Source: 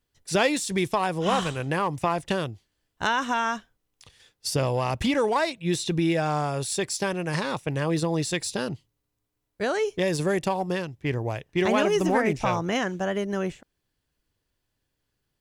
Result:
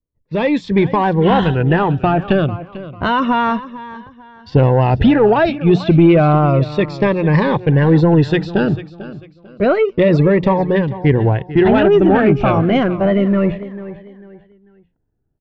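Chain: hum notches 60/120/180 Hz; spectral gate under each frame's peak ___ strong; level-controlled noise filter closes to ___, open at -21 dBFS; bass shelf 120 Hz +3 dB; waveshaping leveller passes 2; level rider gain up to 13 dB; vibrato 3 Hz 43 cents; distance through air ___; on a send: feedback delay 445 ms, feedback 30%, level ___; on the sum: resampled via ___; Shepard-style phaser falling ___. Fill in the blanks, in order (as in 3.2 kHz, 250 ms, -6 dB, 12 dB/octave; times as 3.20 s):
-30 dB, 860 Hz, 440 m, -15.5 dB, 16 kHz, 0.3 Hz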